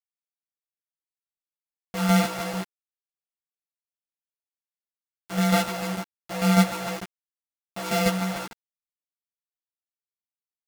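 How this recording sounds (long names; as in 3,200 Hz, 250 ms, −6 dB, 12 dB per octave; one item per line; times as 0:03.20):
a buzz of ramps at a fixed pitch in blocks of 64 samples
tremolo saw down 6.7 Hz, depth 60%
a quantiser's noise floor 6 bits, dither none
a shimmering, thickened sound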